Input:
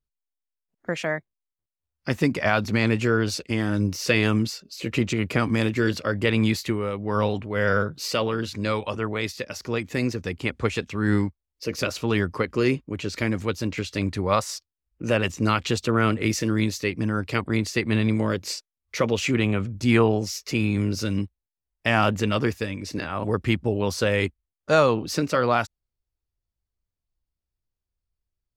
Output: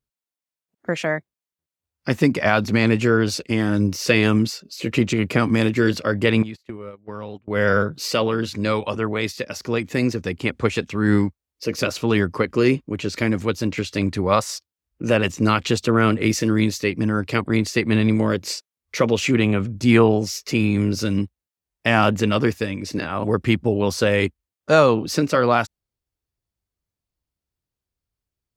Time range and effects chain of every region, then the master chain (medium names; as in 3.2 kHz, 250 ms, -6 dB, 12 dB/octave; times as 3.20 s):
6.42–7.48 s: gate -26 dBFS, range -29 dB + treble shelf 6.3 kHz -8.5 dB + compression, threshold -33 dBFS
whole clip: high-pass 230 Hz 6 dB/octave; bass shelf 300 Hz +8 dB; trim +3 dB